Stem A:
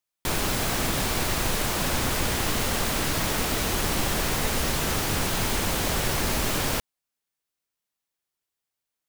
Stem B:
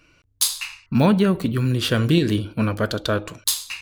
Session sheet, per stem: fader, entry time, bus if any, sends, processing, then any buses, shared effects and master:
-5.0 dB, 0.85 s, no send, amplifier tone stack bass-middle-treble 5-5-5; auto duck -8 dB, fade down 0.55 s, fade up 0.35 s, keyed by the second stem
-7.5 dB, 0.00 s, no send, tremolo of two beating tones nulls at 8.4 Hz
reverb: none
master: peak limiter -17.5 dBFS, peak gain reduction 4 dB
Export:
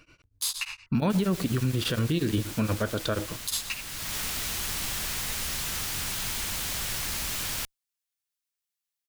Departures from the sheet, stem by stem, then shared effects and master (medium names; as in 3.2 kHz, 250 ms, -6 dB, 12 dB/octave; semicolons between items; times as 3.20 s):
stem A -5.0 dB -> +4.0 dB; stem B -7.5 dB -> +1.5 dB